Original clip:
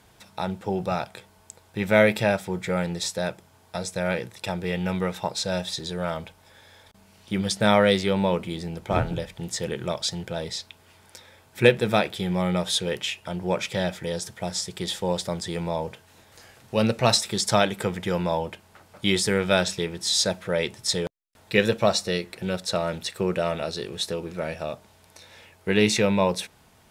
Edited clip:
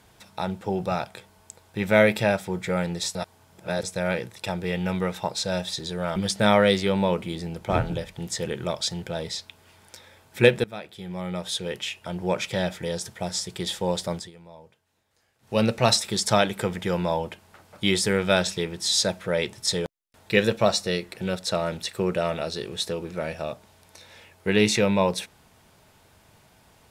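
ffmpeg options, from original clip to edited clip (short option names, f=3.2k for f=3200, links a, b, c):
-filter_complex "[0:a]asplit=7[a][b][c][d][e][f][g];[a]atrim=end=3.152[h];[b]atrim=start=3.148:end=3.832,asetpts=PTS-STARTPTS,areverse[i];[c]atrim=start=3.828:end=6.162[j];[d]atrim=start=7.368:end=11.85,asetpts=PTS-STARTPTS,afade=t=out:st=4.478:d=0.004:c=hsin:silence=0.1[k];[e]atrim=start=11.85:end=15.52,asetpts=PTS-STARTPTS,afade=t=in:d=1.66:silence=0.1,afade=t=out:st=3.5:d=0.17:silence=0.112202[l];[f]atrim=start=15.52:end=16.6,asetpts=PTS-STARTPTS,volume=-19dB[m];[g]atrim=start=16.6,asetpts=PTS-STARTPTS,afade=t=in:d=0.17:silence=0.112202[n];[h][i]acrossfade=d=0.004:c1=hsin:c2=hsin[o];[o][j]acrossfade=d=0.004:c1=hsin:c2=hsin[p];[k][l][m][n]concat=n=4:v=0:a=1[q];[p][q]acrossfade=d=0.004:c1=hsin:c2=hsin"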